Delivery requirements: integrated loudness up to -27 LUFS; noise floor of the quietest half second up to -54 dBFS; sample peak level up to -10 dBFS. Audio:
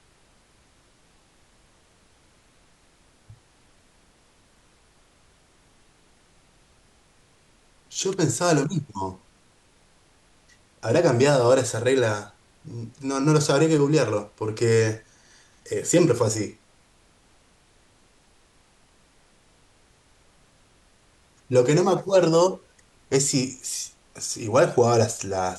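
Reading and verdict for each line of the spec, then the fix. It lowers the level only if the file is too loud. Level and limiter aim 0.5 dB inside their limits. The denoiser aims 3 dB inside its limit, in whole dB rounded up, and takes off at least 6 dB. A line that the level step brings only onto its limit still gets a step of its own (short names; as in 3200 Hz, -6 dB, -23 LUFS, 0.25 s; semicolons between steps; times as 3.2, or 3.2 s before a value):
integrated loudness -22.5 LUFS: fail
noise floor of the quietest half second -59 dBFS: OK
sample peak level -6.5 dBFS: fail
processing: gain -5 dB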